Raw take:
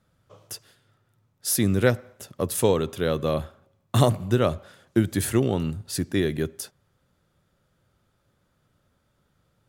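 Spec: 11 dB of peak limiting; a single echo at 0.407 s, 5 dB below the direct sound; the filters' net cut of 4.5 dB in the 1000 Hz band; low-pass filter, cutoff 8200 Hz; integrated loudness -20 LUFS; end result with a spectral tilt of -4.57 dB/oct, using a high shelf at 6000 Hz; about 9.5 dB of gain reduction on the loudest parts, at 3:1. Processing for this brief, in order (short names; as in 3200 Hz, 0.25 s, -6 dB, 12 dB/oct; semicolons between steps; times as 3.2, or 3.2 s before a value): LPF 8200 Hz; bell 1000 Hz -6.5 dB; high shelf 6000 Hz +8.5 dB; compressor 3:1, threshold -28 dBFS; limiter -26 dBFS; echo 0.407 s -5 dB; gain +17 dB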